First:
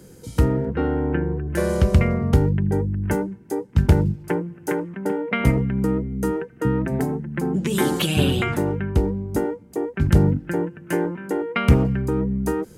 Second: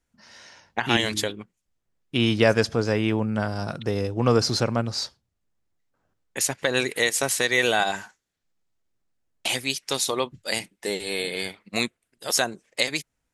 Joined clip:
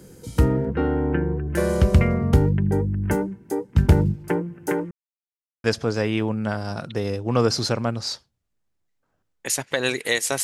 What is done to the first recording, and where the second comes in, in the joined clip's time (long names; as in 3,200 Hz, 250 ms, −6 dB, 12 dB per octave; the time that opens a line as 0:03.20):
first
0:04.91–0:05.64: silence
0:05.64: continue with second from 0:02.55